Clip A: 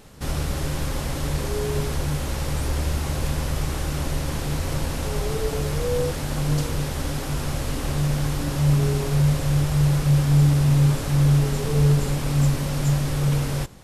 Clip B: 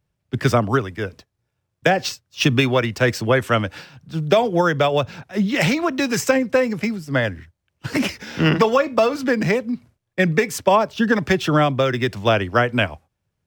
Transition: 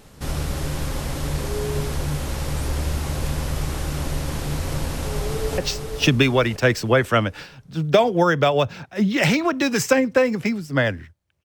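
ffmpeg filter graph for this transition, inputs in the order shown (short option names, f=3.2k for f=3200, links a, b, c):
-filter_complex "[0:a]apad=whole_dur=11.44,atrim=end=11.44,atrim=end=5.582[a];[1:a]atrim=start=1.958:end=7.82[b];[a][b]acrossfade=d=0.004:c1=hsin:c2=hsin,asplit=2[c][d];[d]afade=t=in:st=5.01:d=0.01,afade=t=out:st=5.58:d=0.01,aecho=0:1:490|980|1470|1960|2450:0.530884|0.212354|0.0849415|0.0339766|0.0135906[e];[c][e]amix=inputs=2:normalize=0"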